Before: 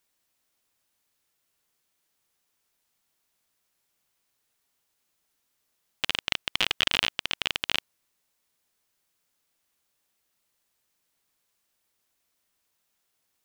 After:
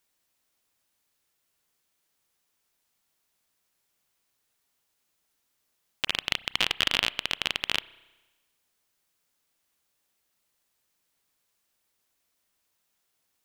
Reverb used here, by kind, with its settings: spring tank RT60 1.2 s, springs 31 ms, chirp 30 ms, DRR 19.5 dB

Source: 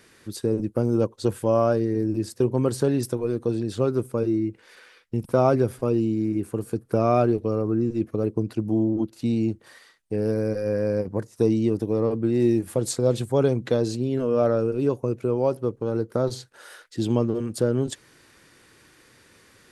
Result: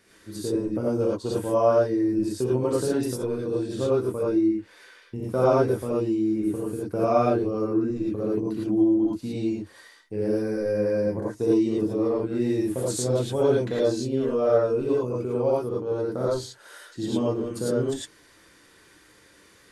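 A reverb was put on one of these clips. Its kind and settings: non-linear reverb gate 0.13 s rising, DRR -6.5 dB; gain -7.5 dB

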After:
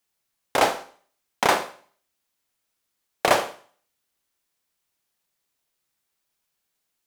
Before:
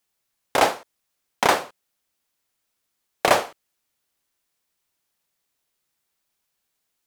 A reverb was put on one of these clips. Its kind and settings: Schroeder reverb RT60 0.48 s, combs from 33 ms, DRR 11.5 dB; gain -1.5 dB

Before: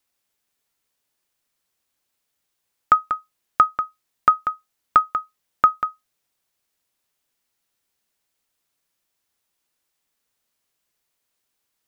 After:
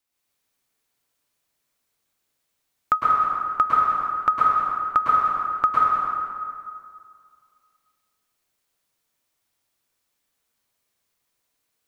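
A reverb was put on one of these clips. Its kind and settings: plate-style reverb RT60 2.2 s, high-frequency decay 0.65×, pre-delay 95 ms, DRR -6.5 dB; gain -5.5 dB

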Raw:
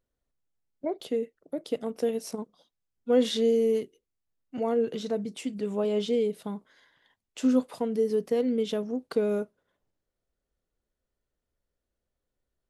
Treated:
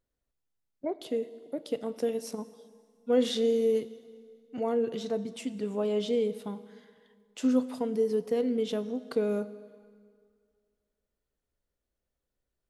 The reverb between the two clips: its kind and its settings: plate-style reverb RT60 2.1 s, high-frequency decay 0.85×, DRR 14 dB; gain -2 dB

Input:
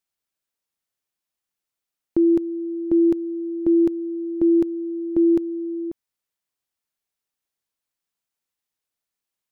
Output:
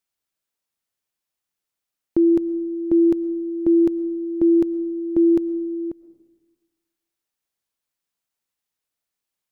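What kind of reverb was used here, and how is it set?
digital reverb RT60 1.1 s, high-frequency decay 0.25×, pre-delay 75 ms, DRR 19 dB; gain +1 dB

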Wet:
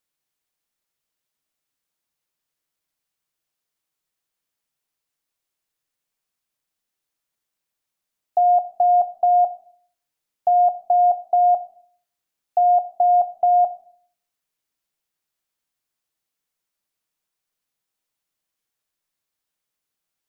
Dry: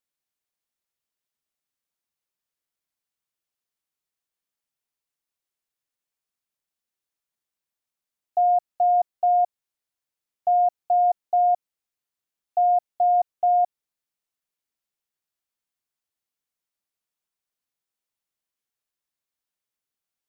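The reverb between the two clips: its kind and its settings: shoebox room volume 680 m³, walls furnished, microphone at 0.57 m; gain +5 dB

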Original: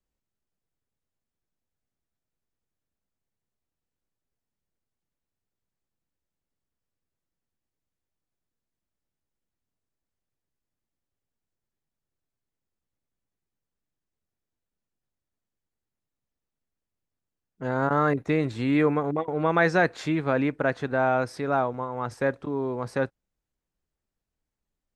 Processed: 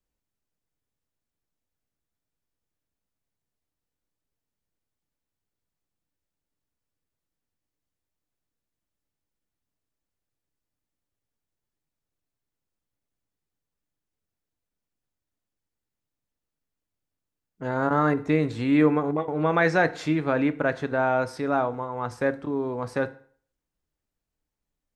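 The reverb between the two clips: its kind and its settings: FDN reverb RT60 0.51 s, low-frequency decay 0.9×, high-frequency decay 0.85×, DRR 11 dB

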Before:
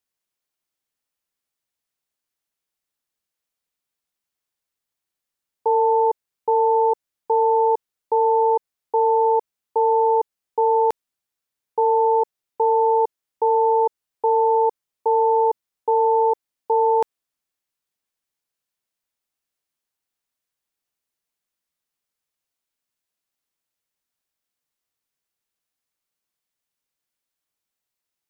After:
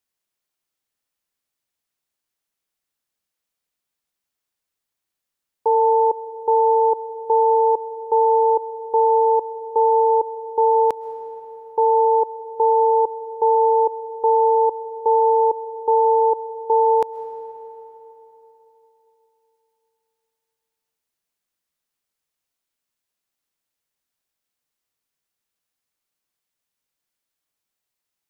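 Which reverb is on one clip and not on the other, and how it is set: digital reverb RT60 3.7 s, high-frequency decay 0.7×, pre-delay 90 ms, DRR 14 dB; gain +1.5 dB

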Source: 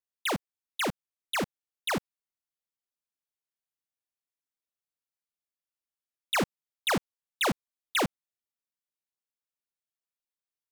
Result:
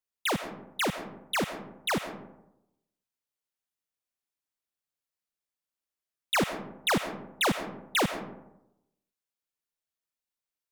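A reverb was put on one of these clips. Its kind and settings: digital reverb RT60 0.88 s, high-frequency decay 0.4×, pre-delay 65 ms, DRR 9.5 dB; gain +1 dB

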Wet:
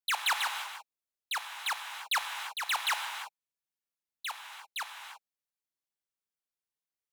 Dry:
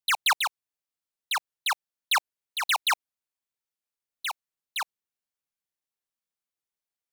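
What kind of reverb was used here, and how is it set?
non-linear reverb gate 0.36 s flat, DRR 4.5 dB; gain -6 dB

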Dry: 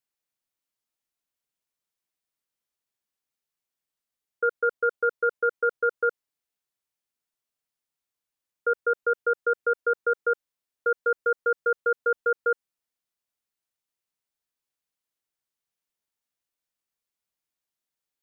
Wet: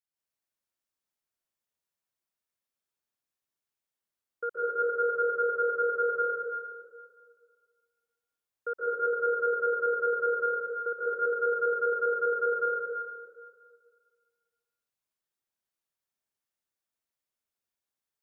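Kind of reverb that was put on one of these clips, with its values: plate-style reverb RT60 1.9 s, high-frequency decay 0.6×, pre-delay 0.115 s, DRR -7 dB; gain -9.5 dB

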